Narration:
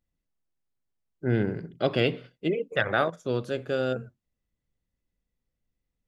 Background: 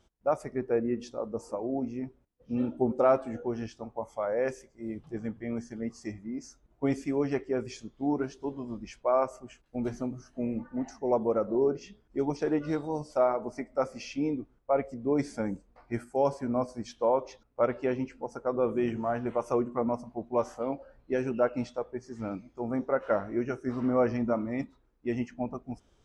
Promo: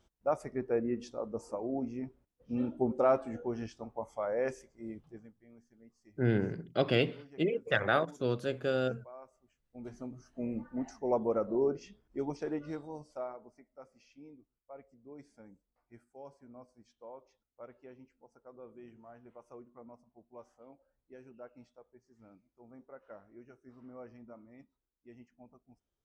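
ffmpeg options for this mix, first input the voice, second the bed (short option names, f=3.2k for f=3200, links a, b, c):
-filter_complex "[0:a]adelay=4950,volume=-3.5dB[a];[1:a]volume=17.5dB,afade=t=out:st=4.72:d=0.59:silence=0.0891251,afade=t=in:st=9.57:d=1.04:silence=0.0891251,afade=t=out:st=11.61:d=1.99:silence=0.1[b];[a][b]amix=inputs=2:normalize=0"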